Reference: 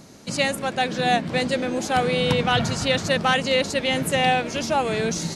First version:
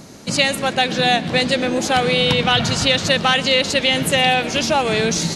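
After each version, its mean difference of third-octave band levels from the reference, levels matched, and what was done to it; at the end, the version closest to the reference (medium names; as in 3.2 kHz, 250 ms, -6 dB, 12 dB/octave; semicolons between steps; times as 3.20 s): 2.0 dB: dynamic bell 3.5 kHz, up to +7 dB, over -36 dBFS, Q 0.95; compression 2:1, threshold -22 dBFS, peak gain reduction 6 dB; on a send: thinning echo 122 ms, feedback 69%, level -20.5 dB; on the sum: trim +6.5 dB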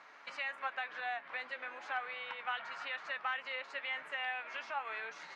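13.5 dB: compression 6:1, threshold -32 dBFS, peak gain reduction 15.5 dB; flange 1 Hz, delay 6.5 ms, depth 1.4 ms, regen +68%; Butterworth band-pass 1.5 kHz, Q 1.1; trim +6.5 dB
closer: first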